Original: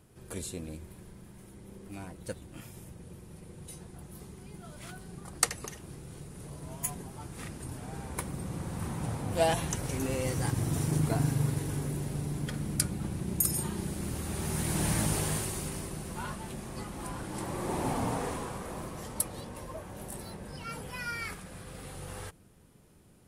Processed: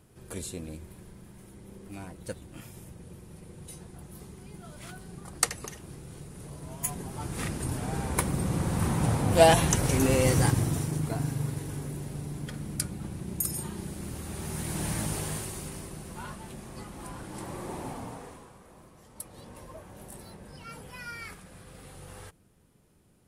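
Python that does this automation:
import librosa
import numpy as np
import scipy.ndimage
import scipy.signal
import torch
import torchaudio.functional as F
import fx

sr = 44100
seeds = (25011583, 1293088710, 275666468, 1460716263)

y = fx.gain(x, sr, db=fx.line((6.76, 1.0), (7.34, 8.5), (10.4, 8.5), (10.94, -2.5), (17.53, -2.5), (18.54, -14.0), (19.06, -14.0), (19.5, -4.0)))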